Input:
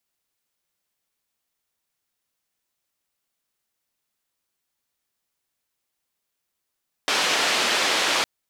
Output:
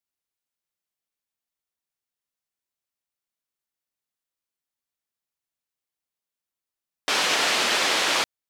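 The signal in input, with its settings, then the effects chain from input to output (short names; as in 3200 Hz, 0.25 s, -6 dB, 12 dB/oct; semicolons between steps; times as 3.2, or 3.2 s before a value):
noise band 330–4100 Hz, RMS -22 dBFS 1.16 s
upward expander 1.5:1, over -42 dBFS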